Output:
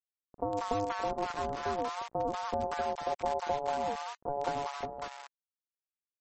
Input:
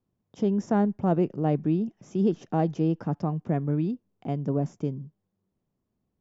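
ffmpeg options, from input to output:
-filter_complex "[0:a]asplit=3[s0][s1][s2];[s0]afade=t=out:st=1.77:d=0.02[s3];[s1]equalizer=f=160:t=o:w=0.83:g=7.5,afade=t=in:st=1.77:d=0.02,afade=t=out:st=4.54:d=0.02[s4];[s2]afade=t=in:st=4.54:d=0.02[s5];[s3][s4][s5]amix=inputs=3:normalize=0,acompressor=threshold=0.0447:ratio=4,acrusher=bits=4:dc=4:mix=0:aa=0.000001,aeval=exprs='val(0)*sin(2*PI*710*n/s)':c=same,aeval=exprs='sgn(val(0))*max(abs(val(0))-0.00178,0)':c=same,acrossover=split=870[s6][s7];[s7]adelay=190[s8];[s6][s8]amix=inputs=2:normalize=0,volume=1.88" -ar 32000 -c:a libmp3lame -b:a 32k

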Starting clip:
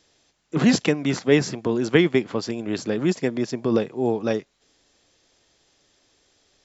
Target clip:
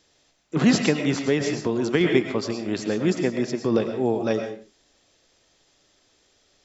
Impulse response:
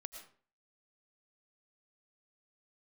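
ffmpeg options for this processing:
-filter_complex "[1:a]atrim=start_sample=2205,afade=t=out:st=0.38:d=0.01,atrim=end_sample=17199[s0];[0:a][s0]afir=irnorm=-1:irlink=0,asettb=1/sr,asplit=3[s1][s2][s3];[s1]atrim=end=1.124[s4];[s2]atrim=start=1.12:end=2.01,asetpts=PTS-STARTPTS,afade=t=in:d=0.004:c=qsin,afade=t=out:st=0.886:d=0.004:c=qsin,acompressor=threshold=0.0708:ratio=3[s5];[s3]atrim=start=2.006[s6];[s4][s5]acrossfade=d=0.004:c1=hsin:c2=qsin[s7];[s7][s6]acrossfade=d=0.004:c1=qsin:c2=hsin,volume=1.68"

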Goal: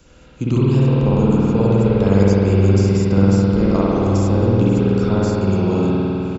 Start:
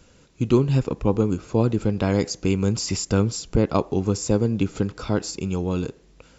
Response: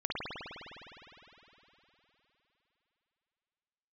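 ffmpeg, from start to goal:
-filter_complex "[0:a]acrossover=split=200|1300|5200[s0][s1][s2][s3];[s0]acompressor=threshold=0.0501:ratio=4[s4];[s1]acompressor=threshold=0.0631:ratio=4[s5];[s2]acompressor=threshold=0.00501:ratio=4[s6];[s3]acompressor=threshold=0.00794:ratio=4[s7];[s4][s5][s6][s7]amix=inputs=4:normalize=0,asplit=2[s8][s9];[s9]adelay=180,highpass=300,lowpass=3400,asoftclip=type=hard:threshold=0.106,volume=0.2[s10];[s8][s10]amix=inputs=2:normalize=0[s11];[1:a]atrim=start_sample=2205[s12];[s11][s12]afir=irnorm=-1:irlink=0,volume=1.41"

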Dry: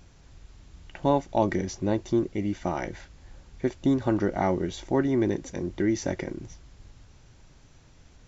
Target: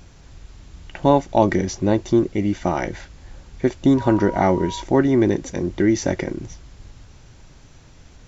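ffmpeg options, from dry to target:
-filter_complex "[0:a]asettb=1/sr,asplit=3[s0][s1][s2];[s0]atrim=end=3.974[s3];[s1]atrim=start=3.97:end=4.82,asetpts=PTS-STARTPTS,afade=t=in:d=0.004:c=qsin,afade=t=out:st=0.846:d=0.004:c=qsin,aeval=exprs='val(0)+0.0126*sin(2*PI*960*n/s)':c=same[s4];[s2]atrim=start=4.816[s5];[s3][s4]acrossfade=d=0.004:c1=hsin:c2=qsin[s6];[s6][s5]acrossfade=d=0.004:c1=qsin:c2=hsin,volume=2.37"

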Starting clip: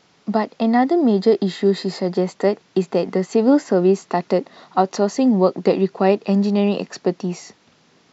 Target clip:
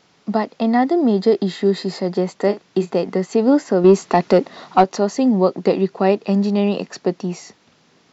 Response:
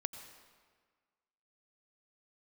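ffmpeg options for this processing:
-filter_complex "[0:a]asettb=1/sr,asplit=3[s0][s1][s2];[s0]atrim=end=2.394[s3];[s1]atrim=start=2.39:end=2.95,asetpts=PTS-STARTPTS,afade=t=in:d=0.004:c=qsin,afade=t=out:st=0.556:d=0.004:c=qsin,asplit=2[s4][s5];[s5]adelay=40,volume=0.251[s6];[s4][s6]amix=inputs=2:normalize=0,atrim=end_sample=24696[s7];[s2]atrim=start=2.946[s8];[s3][s7]acrossfade=d=0.004:c1=hsin:c2=qsin[s9];[s9][s8]acrossfade=d=0.004:c1=qsin:c2=hsin,asettb=1/sr,asplit=3[s10][s11][s12];[s10]atrim=end=3.844[s13];[s11]atrim=start=3.84:end=4.84,asetpts=PTS-STARTPTS,afade=t=in:d=0.004:c=qsin,afade=t=out:st=0.996:d=0.004:c=qsin,acontrast=57[s14];[s12]atrim=start=4.836[s15];[s13][s14]acrossfade=d=0.004:c1=hsin:c2=qsin[s16];[s16][s15]acrossfade=d=0.004:c1=qsin:c2=hsin"

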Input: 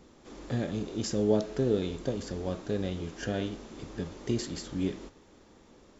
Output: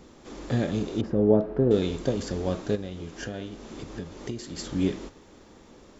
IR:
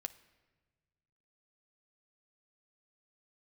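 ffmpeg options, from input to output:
-filter_complex "[0:a]asettb=1/sr,asplit=3[s0][s1][s2];[s0]atrim=end=1.014[s3];[s1]atrim=start=1.01:end=1.71,asetpts=PTS-STARTPTS,afade=t=in:d=0.004:c=qsin,afade=t=out:st=0.696:d=0.004:c=qsin,lowpass=1100[s4];[s2]atrim=start=1.706[s5];[s3][s4]acrossfade=d=0.004:c1=hsin:c2=qsin[s6];[s6][s5]acrossfade=d=0.004:c1=qsin:c2=hsin,asettb=1/sr,asplit=3[s7][s8][s9];[s7]atrim=end=2.754[s10];[s8]atrim=start=2.75:end=4.59,asetpts=PTS-STARTPTS,afade=t=in:d=0.004:c=qsin,afade=t=out:st=1.836:d=0.004:c=qsin,acompressor=threshold=0.01:ratio=3[s11];[s9]atrim=start=4.586[s12];[s10][s11]acrossfade=d=0.004:c1=hsin:c2=qsin[s13];[s13][s12]acrossfade=d=0.004:c1=qsin:c2=hsin,volume=1.88"

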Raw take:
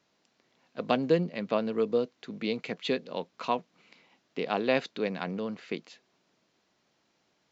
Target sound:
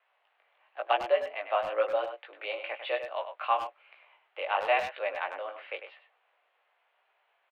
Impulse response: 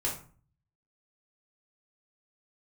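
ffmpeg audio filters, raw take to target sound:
-filter_complex "[0:a]asettb=1/sr,asplit=3[s0][s1][s2];[s0]atrim=end=1.704[s3];[s1]atrim=start=1.7:end=2.17,asetpts=PTS-STARTPTS,afade=t=in:d=0.004:c=qsin,afade=t=out:st=0.466:d=0.004:c=qsin,acontrast=20[s4];[s2]atrim=start=2.166[s5];[s3][s4]acrossfade=d=0.004:c1=hsin:c2=qsin[s6];[s6][s5]acrossfade=d=0.004:c1=qsin:c2=hsin,flanger=delay=15.5:depth=5.7:speed=1,acontrast=53,highpass=f=520:t=q:w=0.5412,highpass=f=520:t=q:w=1.307,lowpass=f=2900:t=q:w=0.5176,lowpass=f=2900:t=q:w=0.7071,lowpass=f=2900:t=q:w=1.932,afreqshift=90,asplit=2[s7][s8];[s8]adelay=100,highpass=300,lowpass=3400,asoftclip=type=hard:threshold=0.075,volume=0.398[s9];[s7][s9]amix=inputs=2:normalize=0"

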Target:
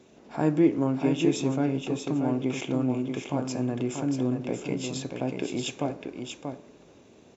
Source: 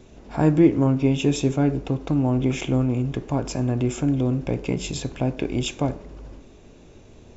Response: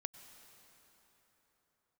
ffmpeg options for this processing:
-filter_complex "[0:a]highpass=180,asplit=2[s0][s1];[s1]aecho=0:1:635:0.501[s2];[s0][s2]amix=inputs=2:normalize=0,volume=0.596"

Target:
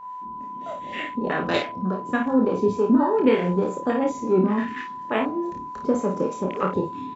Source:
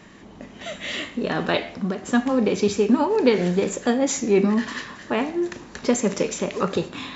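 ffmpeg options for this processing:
-filter_complex "[0:a]acrossover=split=440[s0][s1];[s0]aeval=exprs='val(0)*(1-0.5/2+0.5/2*cos(2*PI*3.4*n/s))':c=same[s2];[s1]aeval=exprs='val(0)*(1-0.5/2-0.5/2*cos(2*PI*3.4*n/s))':c=same[s3];[s2][s3]amix=inputs=2:normalize=0,afwtdn=0.0224,aeval=exprs='val(0)+0.0112*sin(2*PI*1000*n/s)':c=same,aecho=1:1:27|53:0.631|0.473"

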